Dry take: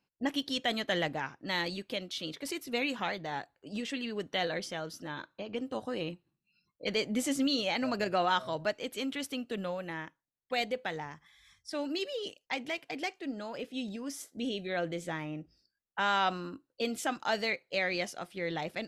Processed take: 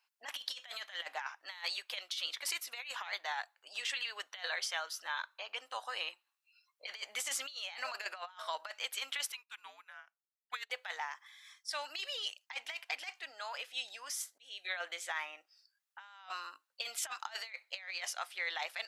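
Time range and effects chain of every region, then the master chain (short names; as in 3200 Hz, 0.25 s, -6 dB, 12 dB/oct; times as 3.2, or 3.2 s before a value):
9.32–10.7 frequency shift -270 Hz + upward expander 2.5:1, over -42 dBFS
14.13–14.65 bell 930 Hz -5 dB 2.9 oct + auto swell 0.393 s
whole clip: HPF 890 Hz 24 dB/oct; negative-ratio compressor -40 dBFS, ratio -0.5; gain +1 dB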